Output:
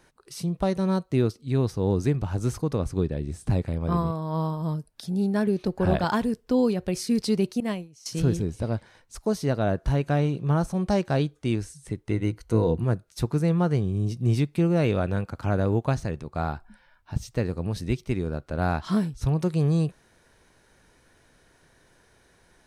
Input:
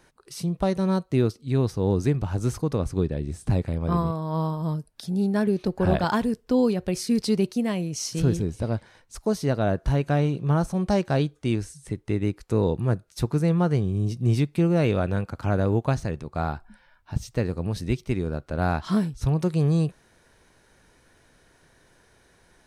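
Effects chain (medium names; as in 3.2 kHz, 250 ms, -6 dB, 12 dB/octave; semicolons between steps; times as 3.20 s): 7.60–8.06 s: gate -25 dBFS, range -20 dB; 12.11–12.84 s: rippled EQ curve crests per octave 1.9, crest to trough 8 dB; trim -1 dB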